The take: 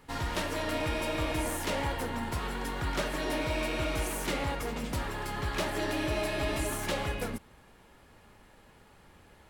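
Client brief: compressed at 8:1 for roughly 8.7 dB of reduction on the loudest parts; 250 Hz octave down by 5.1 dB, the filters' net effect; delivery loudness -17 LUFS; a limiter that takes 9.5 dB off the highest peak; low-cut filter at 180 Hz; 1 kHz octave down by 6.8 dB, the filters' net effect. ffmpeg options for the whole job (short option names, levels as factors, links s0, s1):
-af "highpass=180,equalizer=f=250:t=o:g=-5,equalizer=f=1000:t=o:g=-8.5,acompressor=threshold=0.01:ratio=8,volume=29.9,alimiter=limit=0.355:level=0:latency=1"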